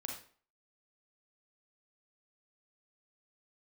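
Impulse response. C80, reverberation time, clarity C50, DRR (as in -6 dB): 9.0 dB, 0.45 s, 3.5 dB, 0.0 dB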